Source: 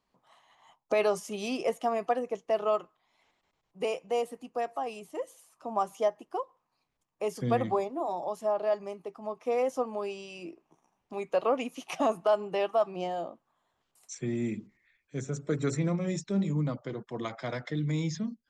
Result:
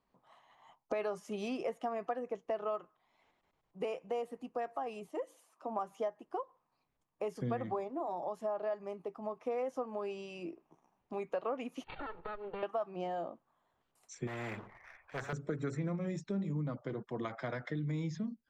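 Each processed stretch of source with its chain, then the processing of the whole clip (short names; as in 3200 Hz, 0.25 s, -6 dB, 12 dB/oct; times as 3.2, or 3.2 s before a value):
5.08–5.79 HPF 200 Hz 24 dB/oct + notches 60/120/180/240/300 Hz
11.84–12.63 minimum comb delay 2.2 ms + compressor 8:1, threshold -38 dBFS + brick-wall FIR low-pass 4600 Hz
14.27–15.33 EQ curve 110 Hz 0 dB, 180 Hz -10 dB, 290 Hz -14 dB, 680 Hz +15 dB, 1100 Hz +14 dB, 5000 Hz -15 dB + sample leveller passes 1 + spectral compressor 2:1
whole clip: dynamic EQ 1600 Hz, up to +5 dB, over -49 dBFS, Q 2; compressor 3:1, threshold -35 dBFS; high shelf 3100 Hz -11 dB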